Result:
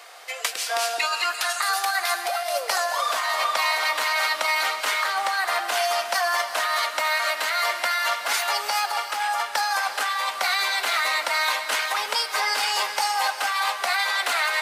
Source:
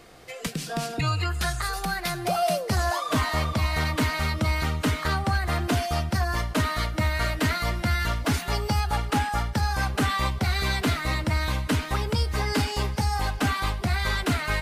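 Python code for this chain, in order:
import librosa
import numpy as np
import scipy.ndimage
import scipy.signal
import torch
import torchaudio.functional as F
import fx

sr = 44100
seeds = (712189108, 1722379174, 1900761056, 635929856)

y = scipy.signal.sosfilt(scipy.signal.butter(4, 670.0, 'highpass', fs=sr, output='sos'), x)
y = fx.over_compress(y, sr, threshold_db=-31.0, ratio=-1.0)
y = fx.rev_gated(y, sr, seeds[0], gate_ms=460, shape='rising', drr_db=8.5)
y = F.gain(torch.from_numpy(y), 7.0).numpy()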